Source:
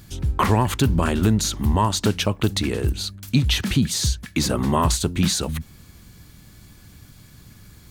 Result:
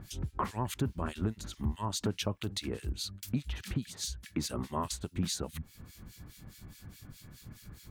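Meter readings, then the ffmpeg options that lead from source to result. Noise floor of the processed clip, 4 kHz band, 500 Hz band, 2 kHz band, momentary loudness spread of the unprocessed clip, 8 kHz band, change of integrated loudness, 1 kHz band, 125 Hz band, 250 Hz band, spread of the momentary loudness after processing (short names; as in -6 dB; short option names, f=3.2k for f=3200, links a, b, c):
-58 dBFS, -14.0 dB, -14.0 dB, -16.5 dB, 5 LU, -14.0 dB, -14.5 dB, -14.5 dB, -15.0 dB, -14.5 dB, 17 LU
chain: -filter_complex "[0:a]acompressor=threshold=-37dB:ratio=2,acrossover=split=1800[a][b];[a]aeval=exprs='val(0)*(1-1/2+1/2*cos(2*PI*4.8*n/s))':c=same[c];[b]aeval=exprs='val(0)*(1-1/2-1/2*cos(2*PI*4.8*n/s))':c=same[d];[c][d]amix=inputs=2:normalize=0"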